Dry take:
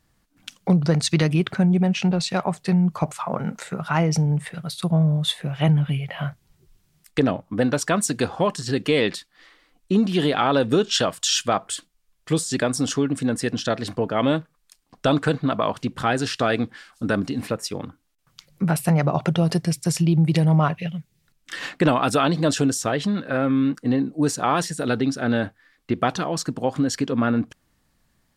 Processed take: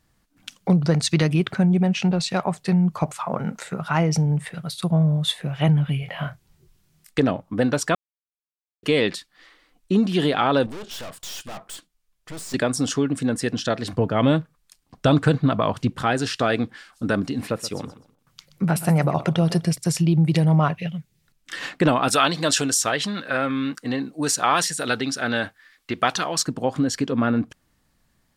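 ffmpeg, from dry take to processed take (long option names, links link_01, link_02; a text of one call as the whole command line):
ffmpeg -i in.wav -filter_complex "[0:a]asettb=1/sr,asplit=3[link_01][link_02][link_03];[link_01]atrim=end=6.004[link_04];[link_02]atrim=start=6:end=7.2,asetpts=PTS-STARTPTS,afade=type=in:duration=0.004:curve=qsin,afade=type=out:start_time=1.196:duration=0.004:curve=qsin,asplit=2[link_05][link_06];[link_06]adelay=25,volume=-7dB[link_07];[link_05][link_07]amix=inputs=2:normalize=0,atrim=end_sample=52920[link_08];[link_03]atrim=start=7.196[link_09];[link_04][link_08]acrossfade=duration=0.004:curve1=hsin:curve2=qsin[link_10];[link_10][link_09]acrossfade=duration=0.004:curve1=qsin:curve2=hsin,asettb=1/sr,asplit=3[link_11][link_12][link_13];[link_11]atrim=end=10.664[link_14];[link_12]atrim=start=10.66:end=12.54,asetpts=PTS-STARTPTS,afade=type=in:duration=0.004:curve=qsin,afade=type=out:start_time=1.876:duration=0.004:curve=qsin,aeval=exprs='(tanh(50.1*val(0)+0.65)-tanh(0.65))/50.1':channel_layout=same[link_15];[link_13]atrim=start=12.536[link_16];[link_14][link_15]acrossfade=duration=0.004:curve1=hsin:curve2=qsin[link_17];[link_17][link_16]acrossfade=duration=0.004:curve1=qsin:curve2=hsin,asettb=1/sr,asplit=3[link_18][link_19][link_20];[link_18]atrim=end=13.924[link_21];[link_19]atrim=start=13.92:end=15.9,asetpts=PTS-STARTPTS,afade=type=in:duration=0.004:curve=qsin,afade=type=out:start_time=1.976:duration=0.004:curve=qsin,equalizer=frequency=87:width=0.66:gain=9[link_22];[link_20]atrim=start=15.896[link_23];[link_21][link_22]acrossfade=duration=0.004:curve1=hsin:curve2=qsin[link_24];[link_24][link_23]acrossfade=duration=0.004:curve1=qsin:curve2=hsin,asettb=1/sr,asplit=3[link_25][link_26][link_27];[link_25]atrim=end=17.414[link_28];[link_26]atrim=start=17.41:end=19.78,asetpts=PTS-STARTPTS,afade=type=in:duration=0.004:curve=qsin,afade=type=out:start_time=2.366:duration=0.004:curve=qsin,aecho=1:1:126|252|378:0.178|0.0445|0.0111,atrim=end_sample=104517[link_29];[link_27]atrim=start=19.776[link_30];[link_28][link_29]acrossfade=duration=0.004:curve1=hsin:curve2=qsin[link_31];[link_31][link_30]acrossfade=duration=0.004:curve1=qsin:curve2=hsin,asettb=1/sr,asplit=3[link_32][link_33][link_34];[link_32]atrim=end=22.084[link_35];[link_33]atrim=start=22.08:end=26.45,asetpts=PTS-STARTPTS,afade=type=in:duration=0.004:curve=qsin,afade=type=out:start_time=4.366:duration=0.004:curve=qsin,tiltshelf=frequency=740:gain=-7[link_36];[link_34]atrim=start=26.446[link_37];[link_35][link_36]acrossfade=duration=0.004:curve1=hsin:curve2=qsin[link_38];[link_38][link_37]acrossfade=duration=0.004:curve1=qsin:curve2=hsin,asplit=3[link_39][link_40][link_41];[link_39]atrim=end=7.95,asetpts=PTS-STARTPTS,afade=type=out:start_time=7.946:duration=0.004:curve=hsin[link_42];[link_40]atrim=start=7.95:end=8.83,asetpts=PTS-STARTPTS,volume=0[link_43];[link_41]atrim=start=8.83,asetpts=PTS-STARTPTS,afade=type=in:duration=0.004:curve=hsin[link_44];[link_42][link_43][link_44]concat=n=3:v=0:a=1" out.wav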